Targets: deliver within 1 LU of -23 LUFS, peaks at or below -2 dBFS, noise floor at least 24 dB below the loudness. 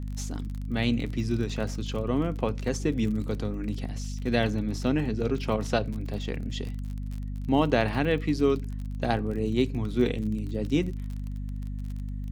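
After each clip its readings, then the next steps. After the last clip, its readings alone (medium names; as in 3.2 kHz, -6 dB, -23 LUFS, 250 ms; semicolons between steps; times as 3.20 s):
tick rate 36 per s; hum 50 Hz; highest harmonic 250 Hz; hum level -31 dBFS; loudness -29.0 LUFS; peak level -7.5 dBFS; loudness target -23.0 LUFS
-> de-click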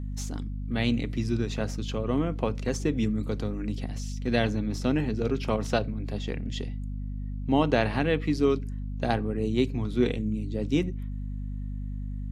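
tick rate 0 per s; hum 50 Hz; highest harmonic 250 Hz; hum level -31 dBFS
-> de-hum 50 Hz, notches 5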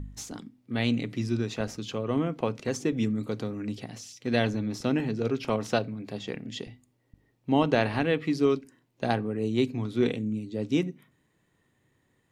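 hum not found; loudness -29.0 LUFS; peak level -9.0 dBFS; loudness target -23.0 LUFS
-> trim +6 dB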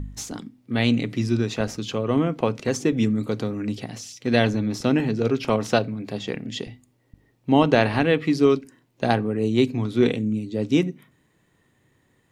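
loudness -23.0 LUFS; peak level -3.0 dBFS; noise floor -65 dBFS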